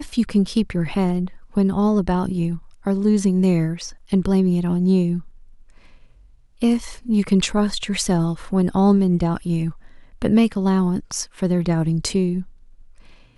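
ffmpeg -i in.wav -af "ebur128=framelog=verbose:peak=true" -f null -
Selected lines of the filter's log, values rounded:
Integrated loudness:
  I:         -20.4 LUFS
  Threshold: -31.1 LUFS
Loudness range:
  LRA:         2.5 LU
  Threshold: -40.9 LUFS
  LRA low:   -22.4 LUFS
  LRA high:  -19.9 LUFS
True peak:
  Peak:       -4.9 dBFS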